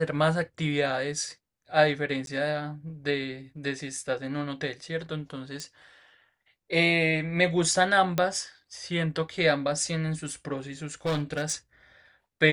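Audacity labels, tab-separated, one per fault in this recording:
2.260000	2.270000	gap
5.600000	5.600000	pop -22 dBFS
8.180000	8.180000	pop -11 dBFS
11.050000	11.530000	clipped -23.5 dBFS

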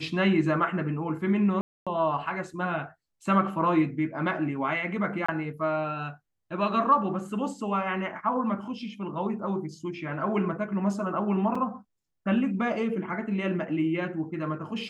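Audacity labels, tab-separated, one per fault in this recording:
1.610000	1.870000	gap 0.256 s
5.260000	5.290000	gap 25 ms
11.550000	11.550000	gap 4.3 ms

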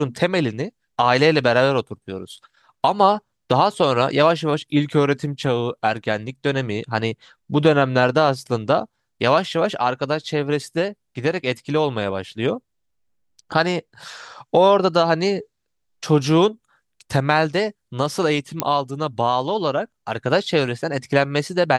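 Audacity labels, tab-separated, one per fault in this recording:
18.600000	18.600000	pop -3 dBFS

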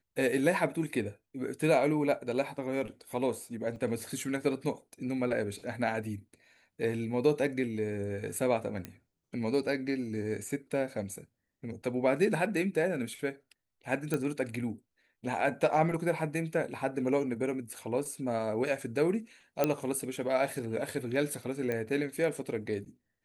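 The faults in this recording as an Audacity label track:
3.760000	3.760000	gap 3.3 ms
8.850000	8.850000	pop -22 dBFS
14.140000	14.140000	pop -17 dBFS
19.640000	19.640000	pop -12 dBFS
21.720000	21.720000	pop -21 dBFS

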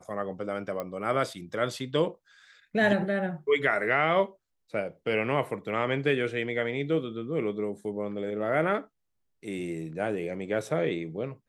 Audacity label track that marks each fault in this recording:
0.800000	0.800000	pop -20 dBFS

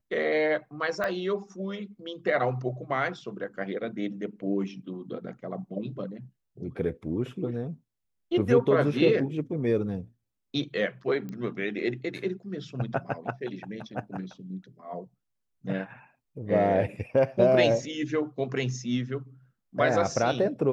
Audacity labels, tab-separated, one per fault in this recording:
1.040000	1.040000	pop -17 dBFS
11.290000	11.290000	pop -26 dBFS

